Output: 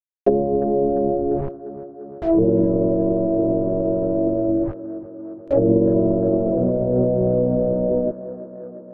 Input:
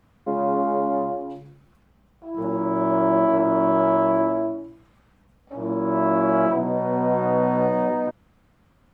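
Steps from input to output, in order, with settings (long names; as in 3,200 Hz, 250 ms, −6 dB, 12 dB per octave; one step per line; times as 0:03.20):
gap after every zero crossing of 0.22 ms
flat-topped bell 520 Hz +14 dB 1.1 octaves
brickwall limiter −13.5 dBFS, peak gain reduction 13.5 dB
bit-depth reduction 6 bits, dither none
low-pass filter 1,600 Hz 6 dB per octave
spectral tilt −3.5 dB per octave
treble cut that deepens with the level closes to 330 Hz, closed at −16 dBFS
tape delay 348 ms, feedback 87%, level −14 dB, low-pass 1,200 Hz
level +5.5 dB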